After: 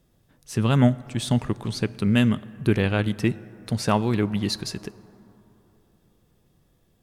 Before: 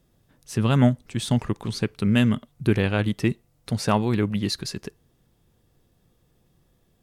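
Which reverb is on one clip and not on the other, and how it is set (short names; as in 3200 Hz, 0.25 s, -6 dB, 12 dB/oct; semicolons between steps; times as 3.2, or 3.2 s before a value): plate-style reverb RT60 3.6 s, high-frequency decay 0.35×, DRR 18.5 dB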